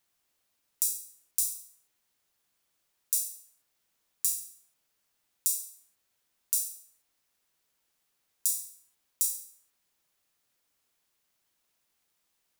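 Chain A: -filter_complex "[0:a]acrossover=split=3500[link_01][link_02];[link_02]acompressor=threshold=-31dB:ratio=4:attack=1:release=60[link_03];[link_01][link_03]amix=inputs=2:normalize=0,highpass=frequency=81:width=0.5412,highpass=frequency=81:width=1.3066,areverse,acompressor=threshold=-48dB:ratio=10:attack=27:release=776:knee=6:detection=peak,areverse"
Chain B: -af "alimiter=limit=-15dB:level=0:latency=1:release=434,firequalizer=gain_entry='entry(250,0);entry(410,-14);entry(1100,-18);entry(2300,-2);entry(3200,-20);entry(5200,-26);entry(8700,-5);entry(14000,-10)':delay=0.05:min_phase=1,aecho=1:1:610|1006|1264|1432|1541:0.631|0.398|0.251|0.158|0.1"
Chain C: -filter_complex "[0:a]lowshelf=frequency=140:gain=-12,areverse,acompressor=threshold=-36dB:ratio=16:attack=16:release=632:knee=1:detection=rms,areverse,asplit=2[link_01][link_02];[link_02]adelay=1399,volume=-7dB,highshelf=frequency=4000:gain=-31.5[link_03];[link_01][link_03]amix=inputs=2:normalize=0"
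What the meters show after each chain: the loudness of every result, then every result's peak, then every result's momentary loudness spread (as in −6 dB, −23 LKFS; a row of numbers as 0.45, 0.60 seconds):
−50.5, −50.0, −41.5 LKFS; −32.0, −24.5, −20.0 dBFS; 14, 11, 11 LU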